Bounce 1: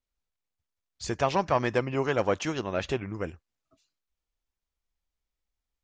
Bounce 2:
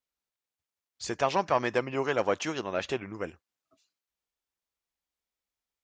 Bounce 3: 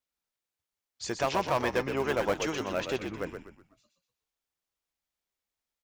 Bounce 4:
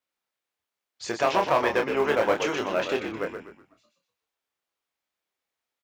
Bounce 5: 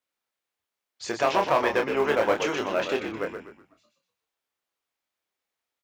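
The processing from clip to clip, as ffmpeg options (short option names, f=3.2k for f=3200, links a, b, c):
-af "highpass=f=280:p=1"
-filter_complex "[0:a]asplit=2[a][b];[b]acrusher=bits=3:mix=0:aa=0.000001,volume=-11.5dB[c];[a][c]amix=inputs=2:normalize=0,asoftclip=type=tanh:threshold=-20dB,asplit=5[d][e][f][g][h];[e]adelay=123,afreqshift=-52,volume=-7dB[i];[f]adelay=246,afreqshift=-104,volume=-15.6dB[j];[g]adelay=369,afreqshift=-156,volume=-24.3dB[k];[h]adelay=492,afreqshift=-208,volume=-32.9dB[l];[d][i][j][k][l]amix=inputs=5:normalize=0"
-filter_complex "[0:a]highpass=f=140:p=1,bass=f=250:g=-5,treble=f=4k:g=-7,asplit=2[a][b];[b]adelay=27,volume=-5dB[c];[a][c]amix=inputs=2:normalize=0,volume=5dB"
-af "bandreject=f=60:t=h:w=6,bandreject=f=120:t=h:w=6,bandreject=f=180:t=h:w=6"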